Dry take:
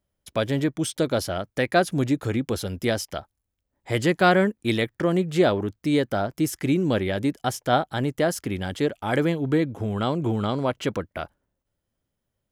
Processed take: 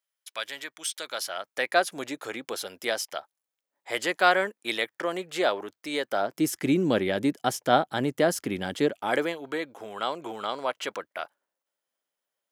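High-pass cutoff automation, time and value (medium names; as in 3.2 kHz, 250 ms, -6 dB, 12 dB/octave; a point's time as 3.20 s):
1.02 s 1.4 kHz
1.67 s 620 Hz
6.04 s 620 Hz
6.51 s 190 Hz
8.88 s 190 Hz
9.37 s 670 Hz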